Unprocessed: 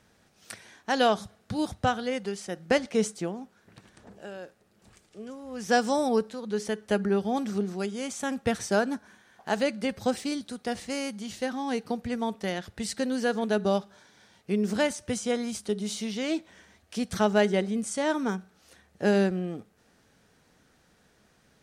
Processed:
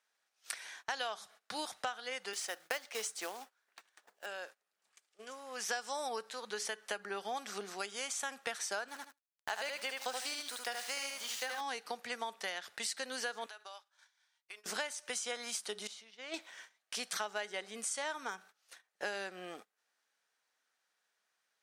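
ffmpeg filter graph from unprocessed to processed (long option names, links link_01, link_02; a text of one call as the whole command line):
ffmpeg -i in.wav -filter_complex "[0:a]asettb=1/sr,asplit=3[link_01][link_02][link_03];[link_01]atrim=end=2.334[link_04];[link_02]atrim=start=2.33:end=4.26,asetpts=PTS-STARTPTS,afade=type=in:duration=0.004:curve=qsin,afade=type=out:start_time=1.926:duration=0.004:curve=qsin,highpass=270,acrusher=bits=4:mode=log:mix=0:aa=0.000001[link_05];[link_03]atrim=start=4.256[link_06];[link_04][link_05]acrossfade=duration=0.004:curve1=hsin:curve2=qsin[link_07];[link_07][link_06]acrossfade=duration=0.004:curve1=qsin:curve2=hsin,asettb=1/sr,asplit=3[link_08][link_09][link_10];[link_08]atrim=end=8.884[link_11];[link_09]atrim=start=8.88:end=11.61,asetpts=PTS-STARTPTS,afade=type=in:duration=0.004:curve=qsin,afade=type=out:start_time=2.726:duration=0.004:curve=qsin,lowshelf=frequency=230:gain=-10,aeval=exprs='val(0)*gte(abs(val(0)),0.00631)':channel_layout=same,aecho=1:1:76|152|228:0.631|0.126|0.0252,atrim=end_sample=120393[link_12];[link_10]atrim=start=11.606[link_13];[link_11][link_12]acrossfade=duration=0.004:curve1=hsin:curve2=qsin[link_14];[link_14][link_13]acrossfade=duration=0.004:curve1=qsin:curve2=hsin,asettb=1/sr,asplit=3[link_15][link_16][link_17];[link_15]atrim=end=13.464[link_18];[link_16]atrim=start=13.46:end=14.66,asetpts=PTS-STARTPTS,afade=type=in:duration=0.004:curve=qsin,afade=type=out:start_time=1.196:duration=0.004:curve=qsin,highpass=860,agate=range=-33dB:threshold=-58dB:ratio=3:release=100:detection=peak,acompressor=threshold=-46dB:ratio=6:attack=3.2:release=140:knee=1:detection=peak[link_19];[link_17]atrim=start=14.656[link_20];[link_18][link_19]acrossfade=duration=0.004:curve1=hsin:curve2=qsin[link_21];[link_21][link_20]acrossfade=duration=0.004:curve1=qsin:curve2=hsin,asettb=1/sr,asplit=3[link_22][link_23][link_24];[link_22]atrim=end=15.874[link_25];[link_23]atrim=start=15.87:end=16.34,asetpts=PTS-STARTPTS,afade=type=in:duration=0.004:curve=qsin,afade=type=out:start_time=0.466:duration=0.004:curve=qsin,agate=range=-12dB:threshold=-26dB:ratio=16:release=100:detection=peak,lowpass=frequency=2400:poles=1[link_26];[link_24]atrim=start=16.336[link_27];[link_25][link_26]acrossfade=duration=0.004:curve1=hsin:curve2=qsin[link_28];[link_28][link_27]acrossfade=duration=0.004:curve1=qsin:curve2=hsin,highpass=960,agate=range=-19dB:threshold=-56dB:ratio=16:detection=peak,acompressor=threshold=-40dB:ratio=6,volume=4.5dB" out.wav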